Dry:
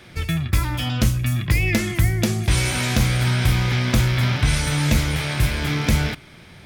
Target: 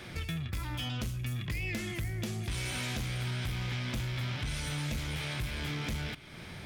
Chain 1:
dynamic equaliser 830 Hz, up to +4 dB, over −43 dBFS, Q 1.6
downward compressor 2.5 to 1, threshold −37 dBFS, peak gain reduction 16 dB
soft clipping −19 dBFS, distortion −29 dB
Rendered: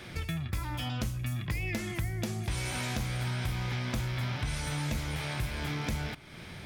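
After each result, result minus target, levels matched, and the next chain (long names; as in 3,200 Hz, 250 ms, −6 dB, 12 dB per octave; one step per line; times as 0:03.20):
soft clipping: distortion −14 dB; 1,000 Hz band +3.0 dB
dynamic equaliser 830 Hz, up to +4 dB, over −43 dBFS, Q 1.6
downward compressor 2.5 to 1, threshold −37 dBFS, peak gain reduction 16 dB
soft clipping −28.5 dBFS, distortion −15 dB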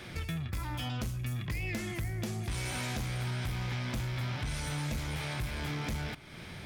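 1,000 Hz band +3.0 dB
dynamic equaliser 3,100 Hz, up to +4 dB, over −43 dBFS, Q 1.6
downward compressor 2.5 to 1, threshold −37 dBFS, peak gain reduction 16 dB
soft clipping −28.5 dBFS, distortion −15 dB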